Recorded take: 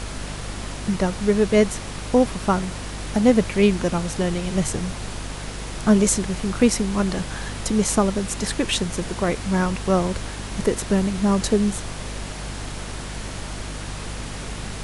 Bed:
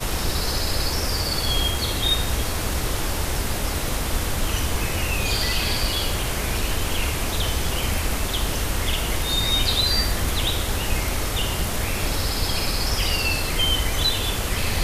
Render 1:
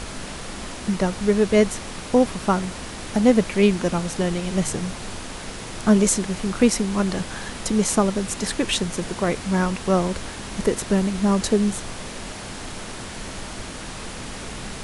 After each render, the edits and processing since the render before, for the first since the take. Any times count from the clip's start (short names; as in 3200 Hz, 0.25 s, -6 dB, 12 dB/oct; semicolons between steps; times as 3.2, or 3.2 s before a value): notches 50/100/150 Hz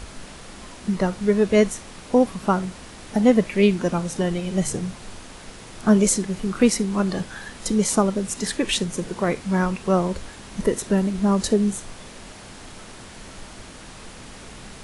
noise print and reduce 7 dB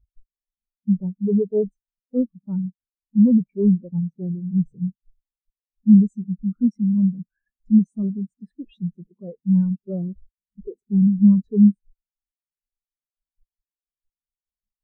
sample leveller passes 5; spectral expander 4:1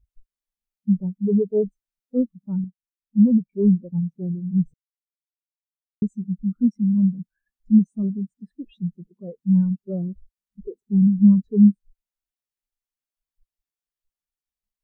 2.64–3.53 upward expander, over -24 dBFS; 4.74–6.02 mute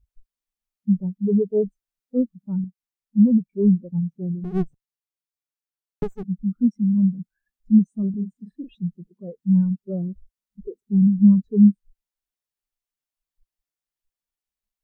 4.44–6.23 minimum comb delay 6.9 ms; 8.1–8.75 doubler 39 ms -7 dB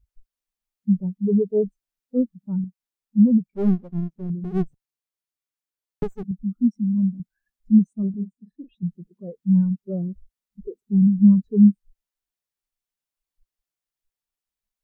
3.5–4.3 half-wave gain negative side -7 dB; 6.31–7.2 fixed phaser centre 460 Hz, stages 6; 7.93–8.83 upward expander, over -41 dBFS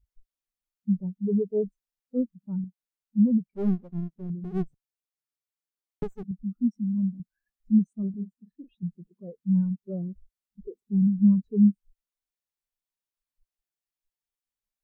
gain -5.5 dB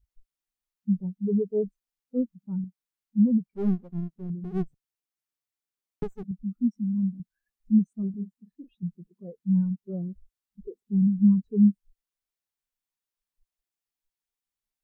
notch 590 Hz, Q 12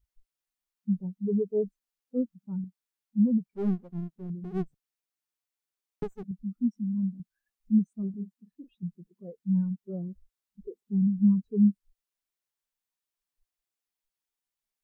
low shelf 200 Hz -5.5 dB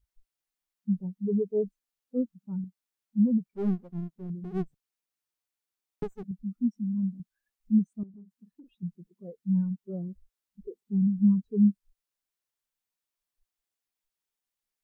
8.03–8.7 compressor 8:1, threshold -46 dBFS